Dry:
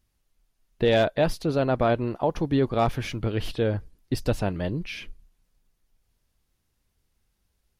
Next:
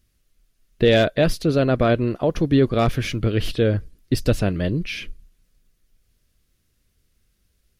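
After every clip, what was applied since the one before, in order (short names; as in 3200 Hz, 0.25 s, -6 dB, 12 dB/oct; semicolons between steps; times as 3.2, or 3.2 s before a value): bell 870 Hz -12.5 dB 0.57 oct; gain +6.5 dB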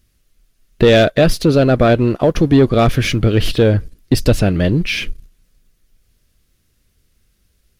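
sample leveller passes 1; in parallel at +0.5 dB: compressor, threshold -24 dBFS, peak gain reduction 13 dB; on the sum: gain +1.5 dB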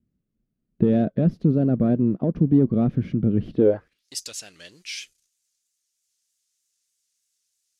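band-pass sweep 200 Hz -> 7000 Hz, 3.56–4.09; vibrato 3.2 Hz 67 cents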